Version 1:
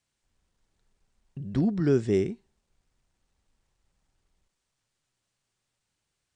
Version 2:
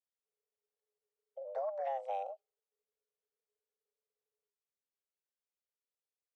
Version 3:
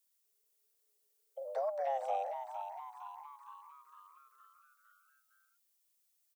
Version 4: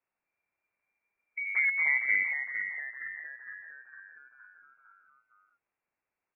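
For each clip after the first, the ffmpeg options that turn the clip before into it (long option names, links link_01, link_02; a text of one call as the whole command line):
ffmpeg -i in.wav -filter_complex "[0:a]afwtdn=0.00794,acrossover=split=250|770[link_01][link_02][link_03];[link_01]acompressor=threshold=-32dB:ratio=4[link_04];[link_02]acompressor=threshold=-32dB:ratio=4[link_05];[link_03]acompressor=threshold=-47dB:ratio=4[link_06];[link_04][link_05][link_06]amix=inputs=3:normalize=0,afreqshift=400,volume=-8dB" out.wav
ffmpeg -i in.wav -filter_complex "[0:a]acrossover=split=750|1400[link_01][link_02][link_03];[link_03]alimiter=level_in=30dB:limit=-24dB:level=0:latency=1:release=142,volume=-30dB[link_04];[link_01][link_02][link_04]amix=inputs=3:normalize=0,crystalizer=i=5:c=0,asplit=8[link_05][link_06][link_07][link_08][link_09][link_10][link_11][link_12];[link_06]adelay=460,afreqshift=110,volume=-8dB[link_13];[link_07]adelay=920,afreqshift=220,volume=-13.2dB[link_14];[link_08]adelay=1380,afreqshift=330,volume=-18.4dB[link_15];[link_09]adelay=1840,afreqshift=440,volume=-23.6dB[link_16];[link_10]adelay=2300,afreqshift=550,volume=-28.8dB[link_17];[link_11]adelay=2760,afreqshift=660,volume=-34dB[link_18];[link_12]adelay=3220,afreqshift=770,volume=-39.2dB[link_19];[link_05][link_13][link_14][link_15][link_16][link_17][link_18][link_19]amix=inputs=8:normalize=0,volume=1dB" out.wav
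ffmpeg -i in.wav -af "lowpass=frequency=2400:width_type=q:width=0.5098,lowpass=frequency=2400:width_type=q:width=0.6013,lowpass=frequency=2400:width_type=q:width=0.9,lowpass=frequency=2400:width_type=q:width=2.563,afreqshift=-2800,volume=8dB" out.wav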